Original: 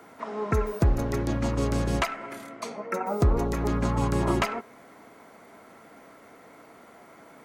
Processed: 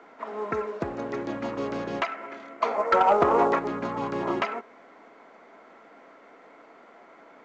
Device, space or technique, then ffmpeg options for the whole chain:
telephone: -filter_complex "[0:a]asplit=3[s0][s1][s2];[s0]afade=t=out:st=2.61:d=0.02[s3];[s1]equalizer=f=960:t=o:w=2.8:g=14.5,afade=t=in:st=2.61:d=0.02,afade=t=out:st=3.58:d=0.02[s4];[s2]afade=t=in:st=3.58:d=0.02[s5];[s3][s4][s5]amix=inputs=3:normalize=0,highpass=290,lowpass=3200,asoftclip=type=tanh:threshold=0.299" -ar 16000 -c:a pcm_mulaw

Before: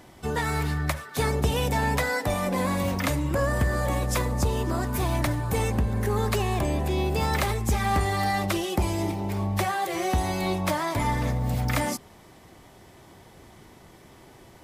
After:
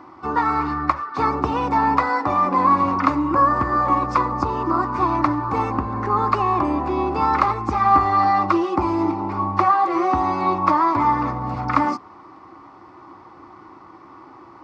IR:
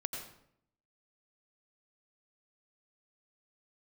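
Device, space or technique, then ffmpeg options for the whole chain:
guitar cabinet: -af "highpass=93,equalizer=f=150:t=q:w=4:g=-6,equalizer=f=1100:t=q:w=4:g=9,equalizer=f=3000:t=q:w=4:g=-5,lowpass=f=4500:w=0.5412,lowpass=f=4500:w=1.3066,superequalizer=6b=3.16:9b=2.51:10b=3.16:13b=0.501"

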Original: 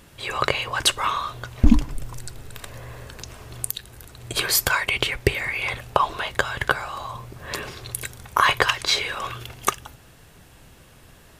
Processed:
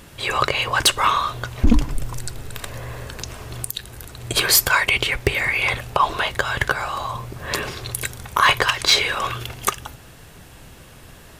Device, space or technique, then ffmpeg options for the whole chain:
limiter into clipper: -af "alimiter=limit=0.422:level=0:latency=1:release=108,asoftclip=type=hard:threshold=0.237,volume=2"

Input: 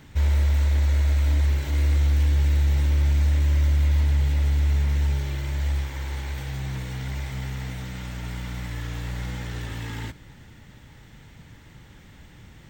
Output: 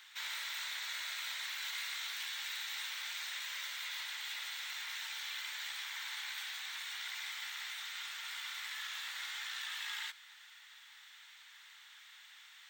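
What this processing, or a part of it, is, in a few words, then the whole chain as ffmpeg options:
headphones lying on a table: -af "highpass=f=1200:w=0.5412,highpass=f=1200:w=1.3066,equalizer=f=3700:t=o:w=0.48:g=7,volume=0.794"

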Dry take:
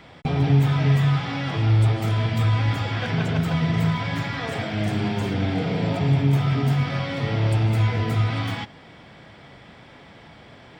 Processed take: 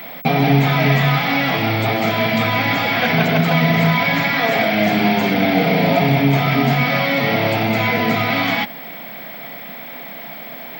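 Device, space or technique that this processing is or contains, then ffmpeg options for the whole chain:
old television with a line whistle: -af "highpass=f=170:w=0.5412,highpass=f=170:w=1.3066,equalizer=f=240:t=q:w=4:g=3,equalizer=f=360:t=q:w=4:g=-5,equalizer=f=690:t=q:w=4:g=7,equalizer=f=2200:t=q:w=4:g=8,equalizer=f=4200:t=q:w=4:g=3,lowpass=f=6700:w=0.5412,lowpass=f=6700:w=1.3066,aeval=exprs='val(0)+0.00794*sin(2*PI*15734*n/s)':c=same,volume=2.82"

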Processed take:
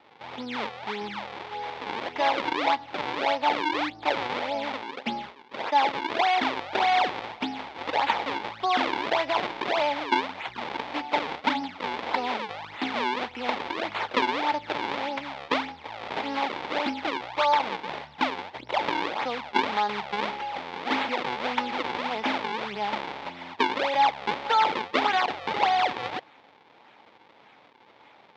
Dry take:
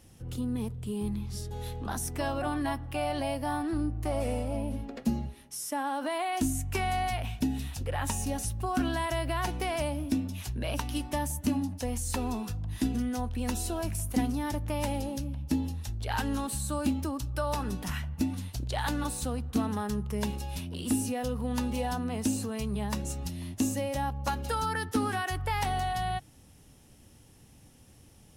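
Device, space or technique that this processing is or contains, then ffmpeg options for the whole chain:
circuit-bent sampling toy: -af "acrusher=samples=40:mix=1:aa=0.000001:lfo=1:lforange=64:lforate=1.7,highpass=470,equalizer=f=870:t=q:w=4:g=9,equalizer=f=2200:t=q:w=4:g=6,equalizer=f=3500:t=q:w=4:g=5,lowpass=f=4400:w=0.5412,lowpass=f=4400:w=1.3066,volume=2.11"

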